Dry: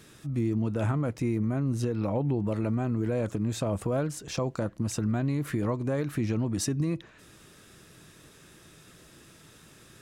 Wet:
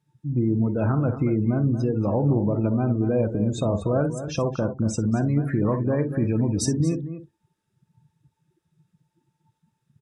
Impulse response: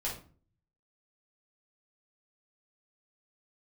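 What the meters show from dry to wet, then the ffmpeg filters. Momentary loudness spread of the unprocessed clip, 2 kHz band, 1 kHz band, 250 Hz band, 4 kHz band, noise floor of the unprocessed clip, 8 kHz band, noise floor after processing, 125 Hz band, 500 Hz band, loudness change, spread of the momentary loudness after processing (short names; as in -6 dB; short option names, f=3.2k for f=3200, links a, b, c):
4 LU, +1.5 dB, +5.0 dB, +6.0 dB, +1.5 dB, -55 dBFS, +3.0 dB, -77 dBFS, +6.0 dB, +6.0 dB, +6.0 dB, 4 LU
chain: -filter_complex "[0:a]aeval=exprs='val(0)+0.00126*sin(2*PI*890*n/s)':c=same,asplit=2[a][b];[b]aecho=0:1:49|63:0.282|0.282[c];[a][c]amix=inputs=2:normalize=0,afftdn=nr=34:nf=-37,asplit=2[d][e];[e]adelay=233.2,volume=-11dB,highshelf=f=4k:g=-5.25[f];[d][f]amix=inputs=2:normalize=0,volume=5dB"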